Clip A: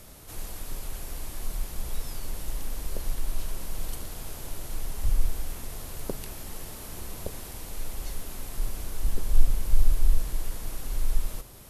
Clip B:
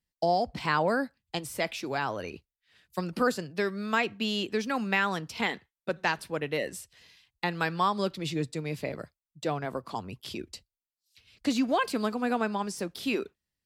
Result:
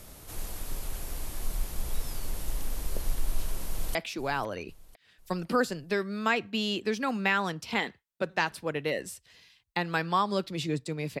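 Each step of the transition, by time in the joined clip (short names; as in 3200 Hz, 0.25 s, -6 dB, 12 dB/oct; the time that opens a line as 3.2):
clip A
3.68–3.95 echo throw 0.5 s, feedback 50%, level -16.5 dB
3.95 switch to clip B from 1.62 s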